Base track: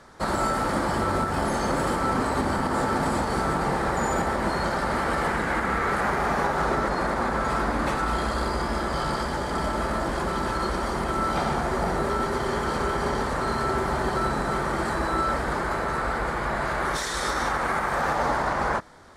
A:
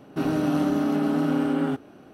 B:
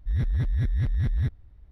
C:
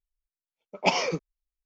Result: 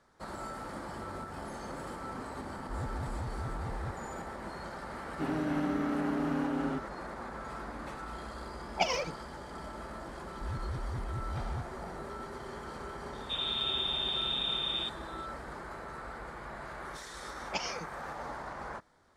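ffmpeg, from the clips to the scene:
ffmpeg -i bed.wav -i cue0.wav -i cue1.wav -i cue2.wav -filter_complex "[2:a]asplit=2[link_01][link_02];[1:a]asplit=2[link_03][link_04];[3:a]asplit=2[link_05][link_06];[0:a]volume=-16.5dB[link_07];[link_03]highshelf=frequency=7900:gain=-10.5[link_08];[link_05]aphaser=in_gain=1:out_gain=1:delay=2.1:decay=0.76:speed=1.5:type=triangular[link_09];[link_04]lowpass=frequency=3300:width_type=q:width=0.5098,lowpass=frequency=3300:width_type=q:width=0.6013,lowpass=frequency=3300:width_type=q:width=0.9,lowpass=frequency=3300:width_type=q:width=2.563,afreqshift=-3900[link_10];[link_06]highshelf=frequency=4100:gain=11.5[link_11];[link_01]atrim=end=1.71,asetpts=PTS-STARTPTS,volume=-14dB,afade=type=in:duration=0.004:curve=hsin,afade=type=out:start_time=1.706:duration=0.004:curve=hsin,adelay=2630[link_12];[link_08]atrim=end=2.13,asetpts=PTS-STARTPTS,volume=-9dB,afade=type=in:duration=0.004:curve=hsin,afade=type=out:start_time=2.126:duration=0.004:curve=hsin,adelay=5030[link_13];[link_09]atrim=end=1.65,asetpts=PTS-STARTPTS,volume=-10dB,afade=type=in:duration=0.004:curve=hsin,afade=type=out:start_time=1.646:duration=0.004:curve=hsin,adelay=350154S[link_14];[link_02]atrim=end=1.71,asetpts=PTS-STARTPTS,volume=-13dB,afade=type=in:duration=0.004:curve=hsin,afade=type=out:start_time=1.706:duration=0.004:curve=hsin,adelay=455994S[link_15];[link_10]atrim=end=2.13,asetpts=PTS-STARTPTS,volume=-10.5dB,afade=type=in:duration=0.004:curve=hsin,afade=type=out:start_time=2.126:duration=0.004:curve=hsin,adelay=13130[link_16];[link_11]atrim=end=1.65,asetpts=PTS-STARTPTS,volume=-15dB,afade=type=in:duration=0.004:curve=hsin,afade=type=out:start_time=1.646:duration=0.004:curve=hsin,adelay=735588S[link_17];[link_07][link_12][link_13][link_14][link_15][link_16][link_17]amix=inputs=7:normalize=0" out.wav

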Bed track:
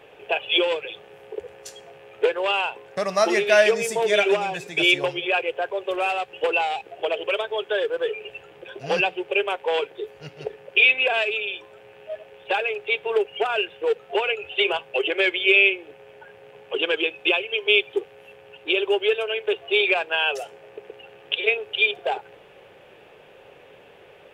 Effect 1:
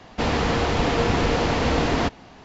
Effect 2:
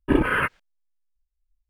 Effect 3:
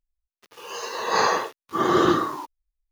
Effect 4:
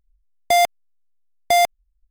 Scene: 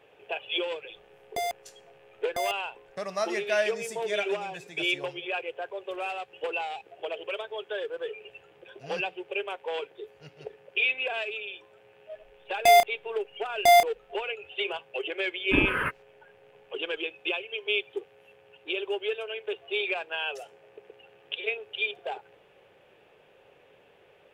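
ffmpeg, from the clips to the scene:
ffmpeg -i bed.wav -i cue0.wav -i cue1.wav -i cue2.wav -i cue3.wav -filter_complex "[4:a]asplit=2[link_01][link_02];[0:a]volume=-9.5dB[link_03];[link_01]acompressor=threshold=-21dB:ratio=6:attack=3.2:release=140:knee=1:detection=peak[link_04];[link_02]asplit=2[link_05][link_06];[link_06]adelay=30,volume=-8dB[link_07];[link_05][link_07]amix=inputs=2:normalize=0[link_08];[link_04]atrim=end=2.1,asetpts=PTS-STARTPTS,volume=-9dB,afade=type=in:duration=0.004:curve=hsin,afade=type=out:start_time=2.096:duration=0.004:curve=hsin,adelay=860[link_09];[link_08]atrim=end=2.1,asetpts=PTS-STARTPTS,volume=-3.5dB,afade=type=in:duration=0.004:curve=hsin,afade=type=out:start_time=2.096:duration=0.004:curve=hsin,adelay=12150[link_10];[2:a]atrim=end=1.69,asetpts=PTS-STARTPTS,volume=-6dB,afade=type=in:duration=0.004:curve=hsin,afade=type=out:start_time=1.686:duration=0.004:curve=hsin,adelay=15430[link_11];[link_03][link_09][link_10][link_11]amix=inputs=4:normalize=0" out.wav

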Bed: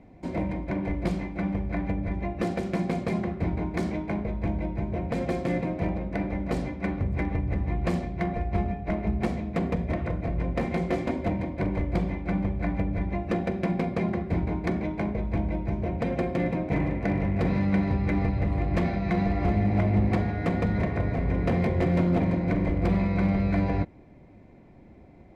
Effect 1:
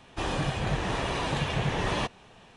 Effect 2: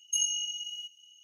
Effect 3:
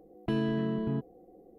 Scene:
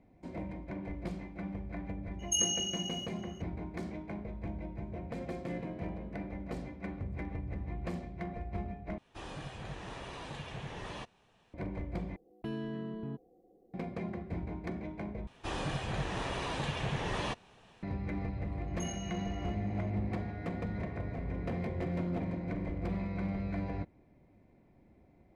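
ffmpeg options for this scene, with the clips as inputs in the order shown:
ffmpeg -i bed.wav -i cue0.wav -i cue1.wav -i cue2.wav -filter_complex "[2:a]asplit=2[link_01][link_02];[3:a]asplit=2[link_03][link_04];[1:a]asplit=2[link_05][link_06];[0:a]volume=-11.5dB[link_07];[link_03]acompressor=threshold=-31dB:ratio=6:attack=3.2:release=140:knee=1:detection=peak[link_08];[link_07]asplit=4[link_09][link_10][link_11][link_12];[link_09]atrim=end=8.984[link_13];[link_05]atrim=end=2.56,asetpts=PTS-STARTPTS,volume=-14.5dB[link_14];[link_10]atrim=start=11.536:end=12.164[link_15];[link_04]atrim=end=1.58,asetpts=PTS-STARTPTS,volume=-9dB[link_16];[link_11]atrim=start=13.736:end=15.274[link_17];[link_06]atrim=end=2.56,asetpts=PTS-STARTPTS,volume=-6.5dB[link_18];[link_12]atrim=start=17.826[link_19];[link_01]atrim=end=1.23,asetpts=PTS-STARTPTS,volume=-1.5dB,afade=type=in:duration=0.004:curve=hsin,afade=type=out:start_time=1.226:duration=0.004:curve=hsin,adelay=2190[link_20];[link_08]atrim=end=1.58,asetpts=PTS-STARTPTS,volume=-16dB,afade=type=in:duration=0.004:curve=hsin,afade=type=out:start_time=1.576:duration=0.004:curve=hsin,adelay=5200[link_21];[link_02]atrim=end=1.23,asetpts=PTS-STARTPTS,volume=-17.5dB,afade=type=in:duration=0.004:curve=hsin,afade=type=out:start_time=1.226:duration=0.004:curve=hsin,adelay=18670[link_22];[link_13][link_14]acrossfade=duration=0.004:curve1=hsin:curve2=hsin[link_23];[link_23][link_15]acrossfade=duration=0.004:curve1=hsin:curve2=hsin[link_24];[link_24][link_16]acrossfade=duration=0.004:curve1=hsin:curve2=hsin[link_25];[link_25][link_17]acrossfade=duration=0.004:curve1=hsin:curve2=hsin[link_26];[link_26][link_18]acrossfade=duration=0.004:curve1=hsin:curve2=hsin[link_27];[link_27][link_19]acrossfade=duration=0.004:curve1=hsin:curve2=hsin[link_28];[link_28][link_20][link_21][link_22]amix=inputs=4:normalize=0" out.wav

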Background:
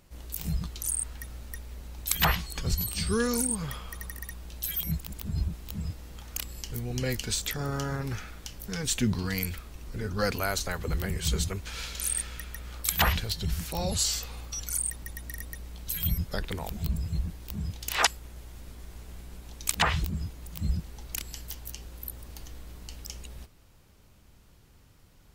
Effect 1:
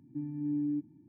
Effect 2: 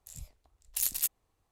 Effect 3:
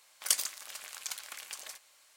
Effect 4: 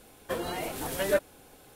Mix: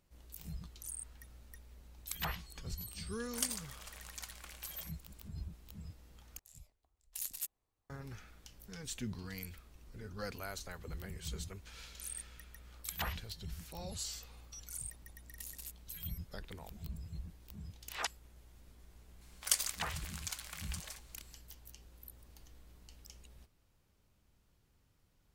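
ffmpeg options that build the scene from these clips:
ffmpeg -i bed.wav -i cue0.wav -i cue1.wav -i cue2.wav -filter_complex "[3:a]asplit=2[link_01][link_02];[2:a]asplit=2[link_03][link_04];[0:a]volume=-14.5dB[link_05];[link_01]tiltshelf=frequency=690:gain=4.5[link_06];[link_04]acompressor=threshold=-37dB:ratio=6:attack=3.2:release=140:knee=1:detection=peak[link_07];[link_05]asplit=2[link_08][link_09];[link_08]atrim=end=6.394[link_10];[link_03]atrim=end=1.51,asetpts=PTS-STARTPTS,volume=-11dB[link_11];[link_09]atrim=start=7.896[link_12];[link_06]atrim=end=2.16,asetpts=PTS-STARTPTS,volume=-4dB,afade=type=in:duration=0.004:curve=hsin,afade=type=out:start_time=2.156:duration=0.004:curve=hsin,adelay=3120[link_13];[link_07]atrim=end=1.51,asetpts=PTS-STARTPTS,volume=-6.5dB,afade=type=in:duration=0.004:curve=hsin,afade=type=out:start_time=1.506:duration=0.004:curve=hsin,adelay=14640[link_14];[link_02]atrim=end=2.16,asetpts=PTS-STARTPTS,volume=-3dB,afade=type=in:duration=0.004:curve=hsin,afade=type=out:start_time=2.156:duration=0.004:curve=hsin,adelay=19210[link_15];[link_10][link_11]acrossfade=duration=0.004:curve1=hsin:curve2=hsin[link_16];[link_16][link_12]acrossfade=duration=0.004:curve1=hsin:curve2=hsin[link_17];[link_17][link_13][link_14][link_15]amix=inputs=4:normalize=0" out.wav

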